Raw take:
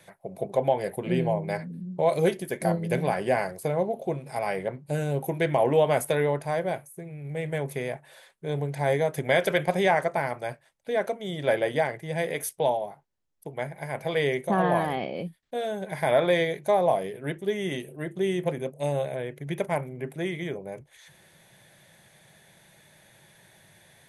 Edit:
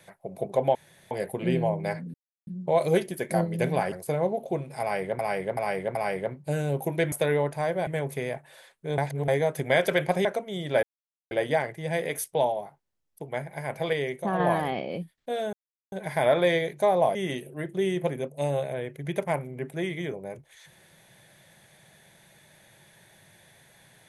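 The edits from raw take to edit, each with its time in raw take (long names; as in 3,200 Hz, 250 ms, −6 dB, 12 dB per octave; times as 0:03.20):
0:00.75: splice in room tone 0.36 s
0:01.78: splice in silence 0.33 s
0:03.23–0:03.48: remove
0:04.37–0:04.75: repeat, 4 plays
0:05.54–0:06.01: remove
0:06.76–0:07.46: remove
0:08.57–0:08.87: reverse
0:09.84–0:10.98: remove
0:11.56: splice in silence 0.48 s
0:14.18–0:14.65: clip gain −4 dB
0:15.78: splice in silence 0.39 s
0:17.01–0:17.57: remove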